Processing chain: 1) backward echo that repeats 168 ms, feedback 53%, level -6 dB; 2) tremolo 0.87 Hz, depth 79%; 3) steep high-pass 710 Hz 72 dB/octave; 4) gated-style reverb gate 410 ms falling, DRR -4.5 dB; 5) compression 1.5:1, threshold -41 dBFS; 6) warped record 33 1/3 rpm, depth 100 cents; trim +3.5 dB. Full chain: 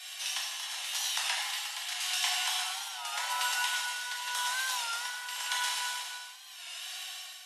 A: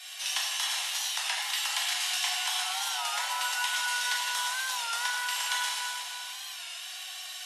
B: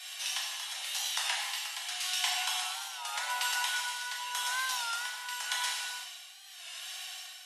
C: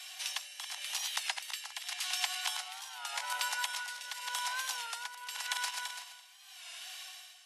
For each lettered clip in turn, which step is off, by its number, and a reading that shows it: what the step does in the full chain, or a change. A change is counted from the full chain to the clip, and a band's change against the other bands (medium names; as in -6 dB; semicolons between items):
2, loudness change +2.5 LU; 1, crest factor change +1.5 dB; 4, momentary loudness spread change +2 LU